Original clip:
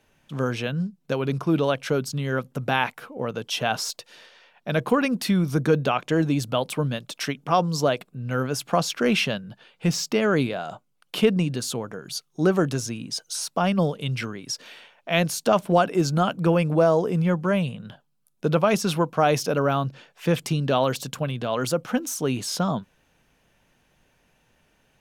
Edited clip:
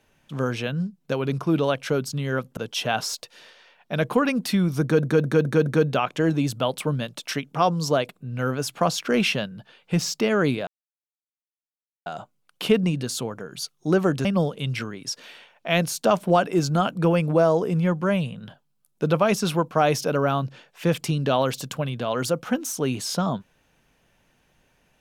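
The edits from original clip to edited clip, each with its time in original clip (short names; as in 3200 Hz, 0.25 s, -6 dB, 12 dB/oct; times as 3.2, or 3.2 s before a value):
2.57–3.33 cut
5.58 stutter 0.21 s, 5 plays
10.59 insert silence 1.39 s
12.78–13.67 cut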